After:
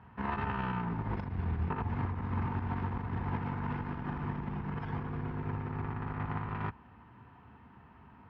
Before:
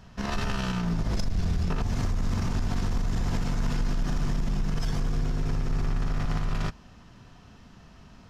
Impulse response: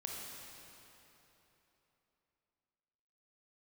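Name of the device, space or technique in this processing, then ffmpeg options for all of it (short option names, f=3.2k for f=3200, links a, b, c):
bass cabinet: -af "highpass=f=67:w=0.5412,highpass=f=67:w=1.3066,equalizer=f=170:t=q:w=4:g=-6,equalizer=f=610:t=q:w=4:g=-9,equalizer=f=910:t=q:w=4:g=9,lowpass=f=2.3k:w=0.5412,lowpass=f=2.3k:w=1.3066,volume=-3dB"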